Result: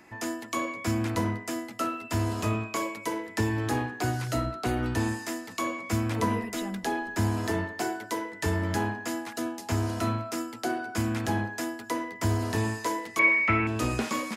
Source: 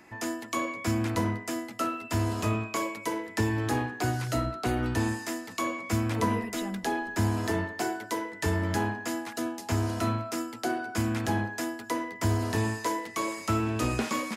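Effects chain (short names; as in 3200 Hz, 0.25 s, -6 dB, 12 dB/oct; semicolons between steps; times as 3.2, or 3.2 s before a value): 13.19–13.67 synth low-pass 2200 Hz, resonance Q 12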